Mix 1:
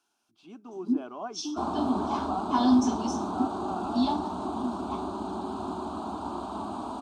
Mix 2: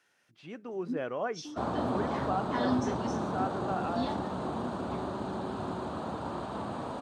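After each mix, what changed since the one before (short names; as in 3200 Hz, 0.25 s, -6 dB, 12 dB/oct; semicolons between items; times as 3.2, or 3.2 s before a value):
first sound -10.0 dB; second sound -4.0 dB; master: remove fixed phaser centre 510 Hz, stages 6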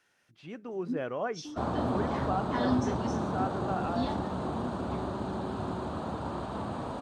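master: add low shelf 90 Hz +10.5 dB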